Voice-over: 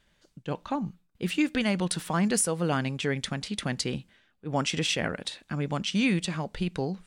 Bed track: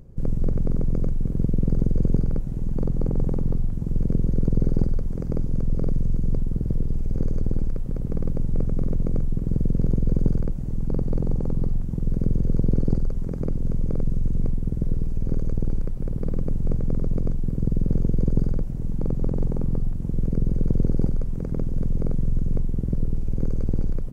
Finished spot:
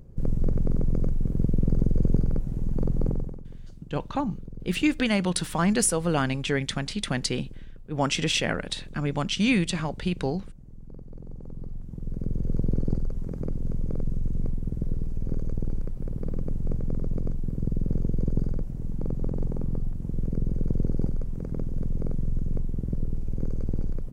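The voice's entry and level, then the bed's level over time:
3.45 s, +2.5 dB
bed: 3.10 s -1.5 dB
3.43 s -19 dB
11.10 s -19 dB
12.56 s -4.5 dB

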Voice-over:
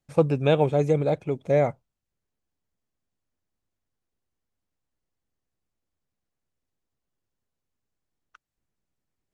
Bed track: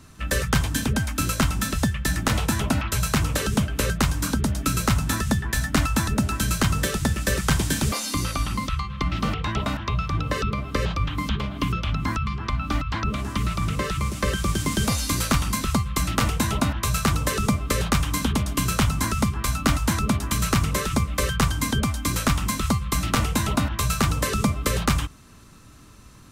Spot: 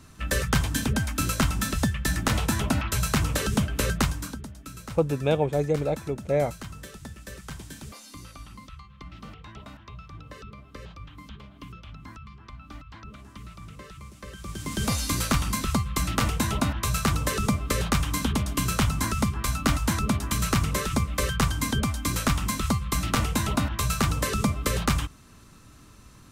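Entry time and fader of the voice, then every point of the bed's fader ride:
4.80 s, -3.0 dB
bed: 4.02 s -2 dB
4.51 s -18 dB
14.30 s -18 dB
14.90 s -2.5 dB

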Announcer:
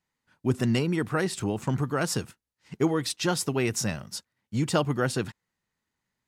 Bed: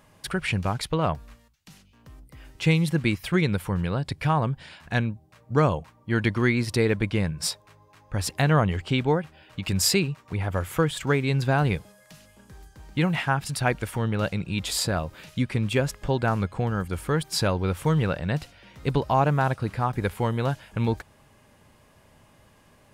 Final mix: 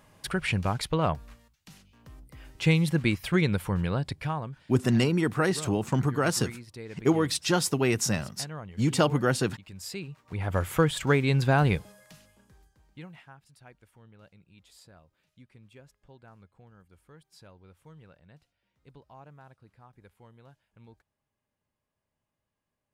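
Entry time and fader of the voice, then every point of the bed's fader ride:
4.25 s, +1.5 dB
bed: 4.02 s -1.5 dB
4.79 s -19.5 dB
9.80 s -19.5 dB
10.56 s 0 dB
11.97 s 0 dB
13.42 s -29 dB

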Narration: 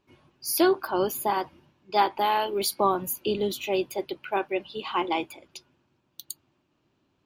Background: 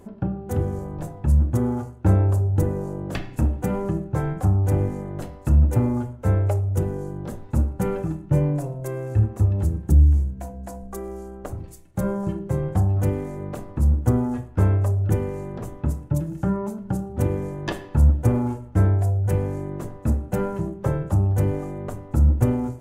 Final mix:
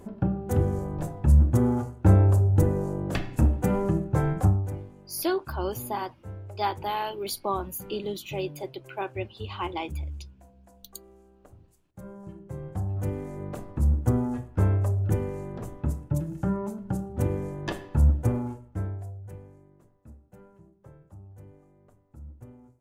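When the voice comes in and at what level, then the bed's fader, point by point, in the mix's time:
4.65 s, -5.5 dB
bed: 4.45 s 0 dB
4.86 s -20 dB
11.93 s -20 dB
13.42 s -4 dB
18.17 s -4 dB
19.79 s -27.5 dB

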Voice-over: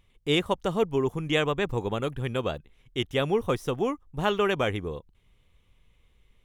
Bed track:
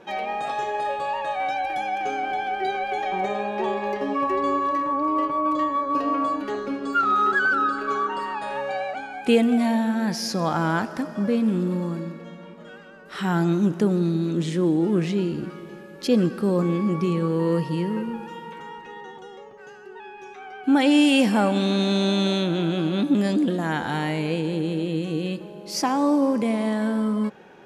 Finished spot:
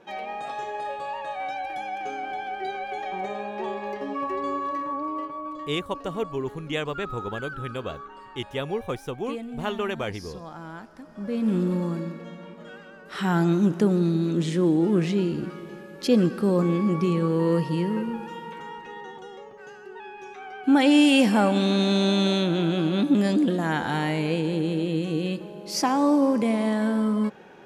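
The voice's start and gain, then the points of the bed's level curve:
5.40 s, -4.0 dB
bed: 4.94 s -5.5 dB
5.86 s -16.5 dB
11.01 s -16.5 dB
11.53 s 0 dB

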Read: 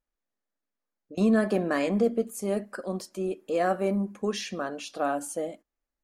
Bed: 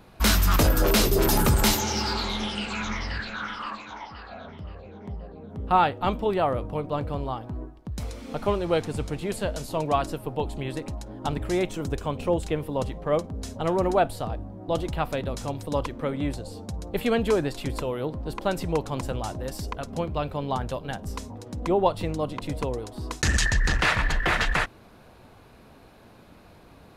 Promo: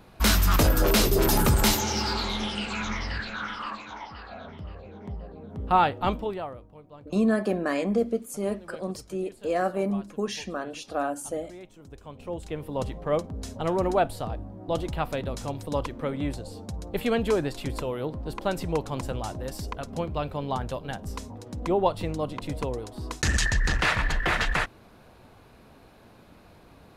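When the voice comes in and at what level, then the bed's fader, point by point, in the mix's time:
5.95 s, -0.5 dB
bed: 6.12 s -0.5 dB
6.69 s -19.5 dB
11.77 s -19.5 dB
12.83 s -1.5 dB

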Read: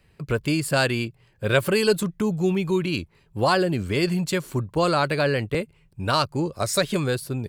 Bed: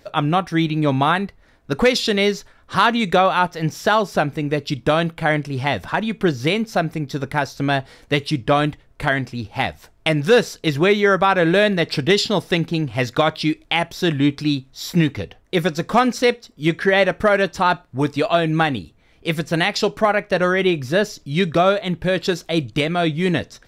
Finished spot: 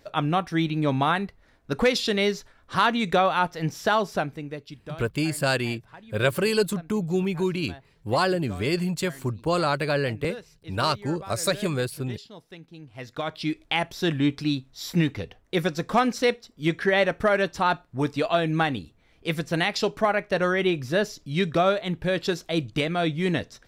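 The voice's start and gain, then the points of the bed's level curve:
4.70 s, -2.5 dB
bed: 4.09 s -5.5 dB
5.08 s -25.5 dB
12.67 s -25.5 dB
13.58 s -5.5 dB

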